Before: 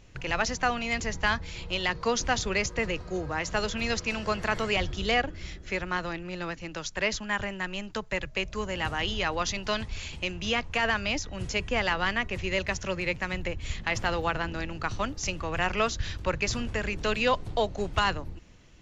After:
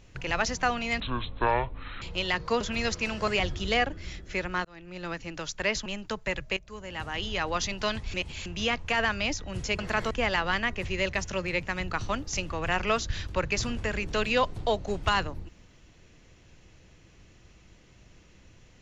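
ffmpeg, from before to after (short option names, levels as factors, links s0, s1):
-filter_complex "[0:a]asplit=13[s0][s1][s2][s3][s4][s5][s6][s7][s8][s9][s10][s11][s12];[s0]atrim=end=1.004[s13];[s1]atrim=start=1:end=1.57,asetpts=PTS-STARTPTS,asetrate=24696,aresample=44100,atrim=end_sample=44887,asetpts=PTS-STARTPTS[s14];[s2]atrim=start=1.566:end=2.162[s15];[s3]atrim=start=3.658:end=4.332[s16];[s4]atrim=start=4.648:end=6.02,asetpts=PTS-STARTPTS,afade=t=out:st=1.368:d=0.004:c=hsin[s17];[s5]atrim=start=6.02:end=7.232,asetpts=PTS-STARTPTS,afade=t=in:d=0.49[s18];[s6]atrim=start=7.708:end=8.42,asetpts=PTS-STARTPTS,afade=t=out:st=0.708:d=0.004:c=hsin:silence=0.16788[s19];[s7]atrim=start=8.42:end=9.992,asetpts=PTS-STARTPTS,afade=t=in:d=0.99:silence=0.16788[s20];[s8]atrim=start=9.988:end=10.312,asetpts=PTS-STARTPTS,areverse[s21];[s9]atrim=start=10.308:end=11.642[s22];[s10]atrim=start=4.328:end=4.652[s23];[s11]atrim=start=11.638:end=13.432[s24];[s12]atrim=start=14.798[s25];[s13][s14]acrossfade=d=0.004:c1=hsin:c2=hsin[s26];[s26][s15]acrossfade=d=0.004:c1=hsin:c2=hsin[s27];[s27][s16]acrossfade=d=0.004:c1=hsin:c2=hsin[s28];[s17][s18]concat=n=2:v=0:a=1[s29];[s28][s29]acrossfade=d=0.004:c1=hsin:c2=hsin[s30];[s19][s20]concat=n=2:v=0:a=1[s31];[s30][s31]acrossfade=d=0.004:c1=hsin:c2=hsin[s32];[s32][s21]acrossfade=d=0.004:c1=hsin:c2=hsin[s33];[s33][s22]acrossfade=d=0.004:c1=hsin:c2=hsin[s34];[s34][s23]acrossfade=d=0.004:c1=hsin:c2=hsin[s35];[s35][s24]acrossfade=d=0.004:c1=hsin:c2=hsin[s36];[s36][s25]acrossfade=d=0.004:c1=hsin:c2=hsin"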